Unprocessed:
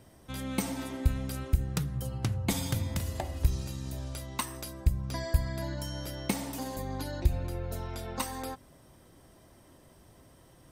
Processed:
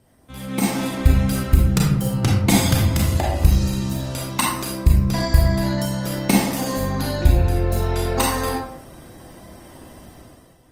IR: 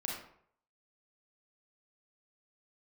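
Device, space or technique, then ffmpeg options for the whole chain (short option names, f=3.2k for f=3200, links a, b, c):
speakerphone in a meeting room: -filter_complex "[1:a]atrim=start_sample=2205[a];[0:a][a]afir=irnorm=-1:irlink=0,dynaudnorm=f=160:g=7:m=14dB" -ar 48000 -c:a libopus -b:a 24k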